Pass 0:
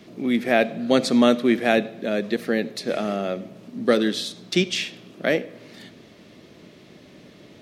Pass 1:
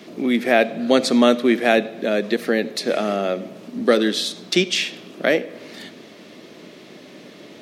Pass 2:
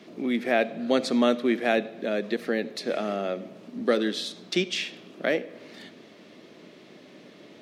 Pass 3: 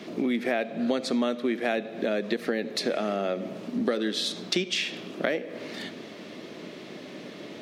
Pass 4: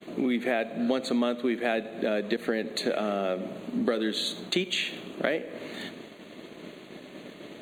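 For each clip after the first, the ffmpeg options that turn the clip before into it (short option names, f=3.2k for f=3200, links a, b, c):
-filter_complex "[0:a]highpass=220,asplit=2[a][b];[b]acompressor=threshold=-28dB:ratio=6,volume=-1dB[c];[a][c]amix=inputs=2:normalize=0,volume=1.5dB"
-af "highshelf=f=7.3k:g=-8,volume=-7dB"
-af "acompressor=threshold=-32dB:ratio=6,volume=8dB"
-af "aeval=exprs='sgn(val(0))*max(abs(val(0))-0.00188,0)':c=same,agate=range=-33dB:threshold=-40dB:ratio=3:detection=peak,asuperstop=centerf=5300:order=12:qfactor=3.2"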